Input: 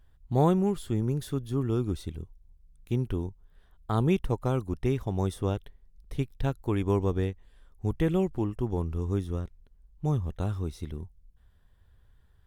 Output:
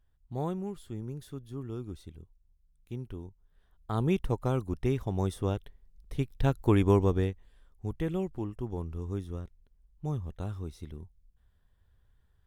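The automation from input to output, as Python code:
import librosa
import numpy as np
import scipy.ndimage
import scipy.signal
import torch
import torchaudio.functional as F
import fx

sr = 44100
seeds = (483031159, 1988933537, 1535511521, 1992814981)

y = fx.gain(x, sr, db=fx.line((3.23, -10.5), (4.24, -1.5), (6.16, -1.5), (6.69, 5.0), (7.87, -6.0)))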